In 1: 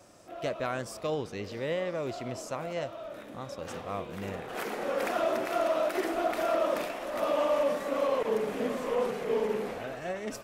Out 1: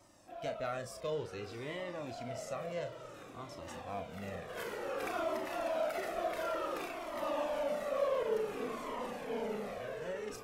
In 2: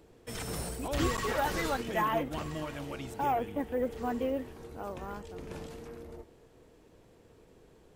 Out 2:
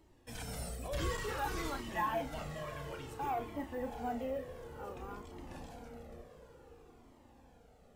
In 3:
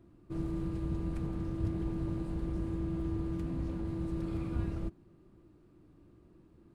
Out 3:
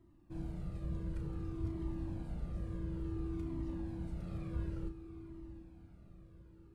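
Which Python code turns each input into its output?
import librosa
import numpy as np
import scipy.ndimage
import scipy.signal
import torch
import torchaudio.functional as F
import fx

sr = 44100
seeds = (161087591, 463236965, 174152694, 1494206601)

p1 = fx.doubler(x, sr, ms=34.0, db=-9.0)
p2 = fx.echo_diffused(p1, sr, ms=718, feedback_pct=58, wet_db=-13.5)
p3 = 10.0 ** (-25.0 / 20.0) * np.tanh(p2 / 10.0 ** (-25.0 / 20.0))
p4 = p2 + F.gain(torch.from_numpy(p3), -6.0).numpy()
p5 = fx.comb_cascade(p4, sr, direction='falling', hz=0.56)
y = F.gain(torch.from_numpy(p5), -5.5).numpy()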